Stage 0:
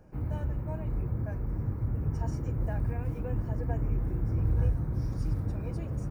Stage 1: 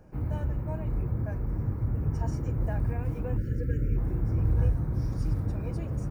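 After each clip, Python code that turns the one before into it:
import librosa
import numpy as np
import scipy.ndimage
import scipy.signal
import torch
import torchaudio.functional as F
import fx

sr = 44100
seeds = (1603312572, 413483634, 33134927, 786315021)

y = fx.spec_erase(x, sr, start_s=3.37, length_s=0.6, low_hz=590.0, high_hz=1300.0)
y = y * 10.0 ** (2.0 / 20.0)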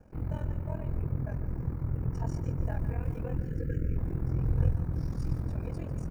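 y = x * np.sin(2.0 * np.pi * 21.0 * np.arange(len(x)) / sr)
y = fx.echo_feedback(y, sr, ms=149, feedback_pct=35, wet_db=-13)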